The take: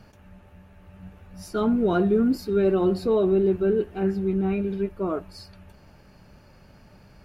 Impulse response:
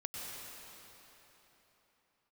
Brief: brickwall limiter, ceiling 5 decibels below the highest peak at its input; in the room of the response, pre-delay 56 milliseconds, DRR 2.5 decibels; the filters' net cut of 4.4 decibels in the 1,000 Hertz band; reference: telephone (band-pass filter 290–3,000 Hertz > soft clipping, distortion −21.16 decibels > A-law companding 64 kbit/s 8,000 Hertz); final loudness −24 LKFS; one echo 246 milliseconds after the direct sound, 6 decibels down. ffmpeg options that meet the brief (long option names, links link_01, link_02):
-filter_complex "[0:a]equalizer=frequency=1000:width_type=o:gain=-6.5,alimiter=limit=-17.5dB:level=0:latency=1,aecho=1:1:246:0.501,asplit=2[link_01][link_02];[1:a]atrim=start_sample=2205,adelay=56[link_03];[link_02][link_03]afir=irnorm=-1:irlink=0,volume=-3.5dB[link_04];[link_01][link_04]amix=inputs=2:normalize=0,highpass=290,lowpass=3000,asoftclip=threshold=-16.5dB,volume=3.5dB" -ar 8000 -c:a pcm_alaw